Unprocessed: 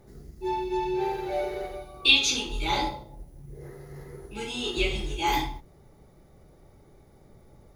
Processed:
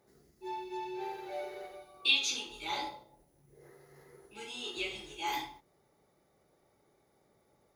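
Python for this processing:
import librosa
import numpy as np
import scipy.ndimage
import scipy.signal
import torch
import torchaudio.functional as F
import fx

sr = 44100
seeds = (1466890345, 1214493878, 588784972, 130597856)

y = fx.highpass(x, sr, hz=530.0, slope=6)
y = y * librosa.db_to_amplitude(-8.0)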